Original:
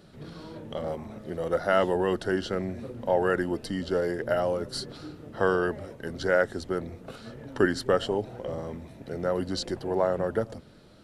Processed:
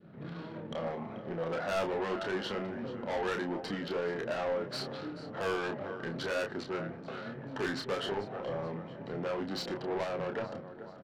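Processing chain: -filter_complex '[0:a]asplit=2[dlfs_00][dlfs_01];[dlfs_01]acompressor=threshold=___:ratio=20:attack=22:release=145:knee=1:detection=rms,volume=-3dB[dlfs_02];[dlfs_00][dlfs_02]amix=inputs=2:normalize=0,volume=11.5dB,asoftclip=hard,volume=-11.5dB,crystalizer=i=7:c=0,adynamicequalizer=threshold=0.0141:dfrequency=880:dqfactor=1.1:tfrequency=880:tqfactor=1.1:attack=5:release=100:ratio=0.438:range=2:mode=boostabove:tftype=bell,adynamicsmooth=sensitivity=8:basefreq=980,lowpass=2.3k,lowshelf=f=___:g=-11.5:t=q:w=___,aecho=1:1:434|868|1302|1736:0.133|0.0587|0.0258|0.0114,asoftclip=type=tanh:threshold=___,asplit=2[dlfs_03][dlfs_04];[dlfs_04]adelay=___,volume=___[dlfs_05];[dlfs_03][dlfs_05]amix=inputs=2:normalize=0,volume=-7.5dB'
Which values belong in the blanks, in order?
-36dB, 100, 1.5, -23dB, 30, -5dB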